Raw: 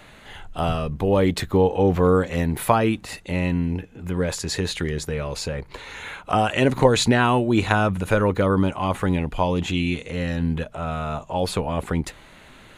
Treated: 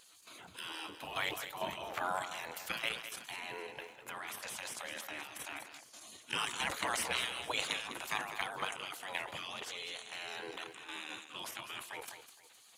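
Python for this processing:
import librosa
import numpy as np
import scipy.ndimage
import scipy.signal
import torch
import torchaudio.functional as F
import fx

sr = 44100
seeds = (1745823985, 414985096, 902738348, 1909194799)

y = fx.spec_gate(x, sr, threshold_db=-20, keep='weak')
y = scipy.signal.sosfilt(scipy.signal.butter(4, 73.0, 'highpass', fs=sr, output='sos'), y)
y = fx.high_shelf(y, sr, hz=9600.0, db=2.5)
y = fx.level_steps(y, sr, step_db=9)
y = fx.dmg_crackle(y, sr, seeds[0], per_s=210.0, level_db=-63.0)
y = fx.vibrato(y, sr, rate_hz=14.0, depth_cents=33.0)
y = fx.echo_multitap(y, sr, ms=(203, 465), db=(-11.0, -20.0))
y = fx.sustainer(y, sr, db_per_s=93.0)
y = y * librosa.db_to_amplitude(1.0)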